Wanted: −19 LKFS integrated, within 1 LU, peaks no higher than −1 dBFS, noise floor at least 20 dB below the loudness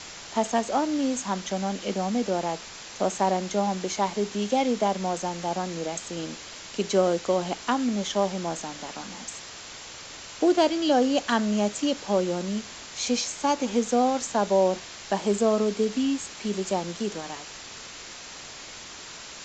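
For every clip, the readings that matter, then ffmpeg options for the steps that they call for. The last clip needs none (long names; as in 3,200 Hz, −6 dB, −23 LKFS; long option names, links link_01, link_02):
background noise floor −42 dBFS; target noise floor −47 dBFS; integrated loudness −26.5 LKFS; sample peak −9.0 dBFS; target loudness −19.0 LKFS
→ -af "afftdn=noise_reduction=6:noise_floor=-42"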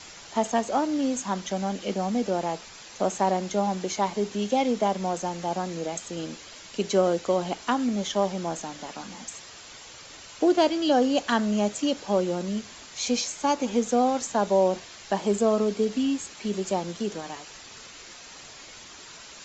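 background noise floor −46 dBFS; target noise floor −47 dBFS
→ -af "afftdn=noise_reduction=6:noise_floor=-46"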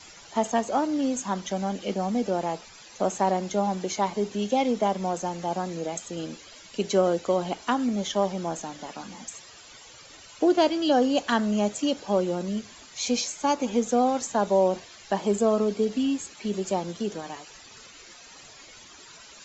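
background noise floor −49 dBFS; integrated loudness −26.5 LKFS; sample peak −9.5 dBFS; target loudness −19.0 LKFS
→ -af "volume=7.5dB"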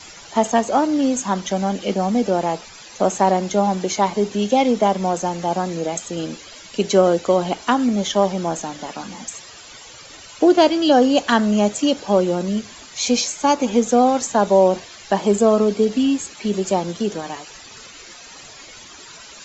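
integrated loudness −19.0 LKFS; sample peak −2.0 dBFS; background noise floor −41 dBFS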